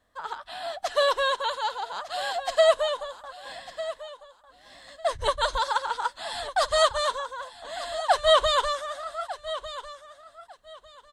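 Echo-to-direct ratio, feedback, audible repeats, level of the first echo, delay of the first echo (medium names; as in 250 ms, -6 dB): -14.0 dB, 21%, 2, -14.0 dB, 1200 ms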